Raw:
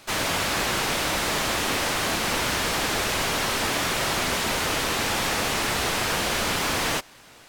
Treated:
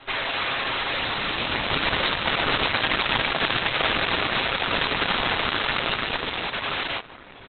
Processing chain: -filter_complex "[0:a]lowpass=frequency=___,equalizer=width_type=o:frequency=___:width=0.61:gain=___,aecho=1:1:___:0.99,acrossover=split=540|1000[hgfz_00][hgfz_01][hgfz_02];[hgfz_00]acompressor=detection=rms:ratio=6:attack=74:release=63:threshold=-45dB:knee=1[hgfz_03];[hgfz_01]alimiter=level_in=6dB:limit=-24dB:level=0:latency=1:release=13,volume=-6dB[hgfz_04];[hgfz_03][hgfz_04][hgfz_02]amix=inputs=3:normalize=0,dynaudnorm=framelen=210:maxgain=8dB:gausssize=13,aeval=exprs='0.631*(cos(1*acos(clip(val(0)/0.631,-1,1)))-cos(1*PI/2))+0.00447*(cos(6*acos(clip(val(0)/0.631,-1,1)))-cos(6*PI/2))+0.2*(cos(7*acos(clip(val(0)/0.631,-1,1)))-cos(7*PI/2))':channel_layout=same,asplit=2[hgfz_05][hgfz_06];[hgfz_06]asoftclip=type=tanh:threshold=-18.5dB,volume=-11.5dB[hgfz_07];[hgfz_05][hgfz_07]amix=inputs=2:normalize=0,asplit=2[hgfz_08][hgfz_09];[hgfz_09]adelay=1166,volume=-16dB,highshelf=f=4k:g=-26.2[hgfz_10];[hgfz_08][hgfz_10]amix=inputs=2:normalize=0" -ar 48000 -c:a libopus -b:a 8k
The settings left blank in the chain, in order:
9.7k, 170, -14, 7.4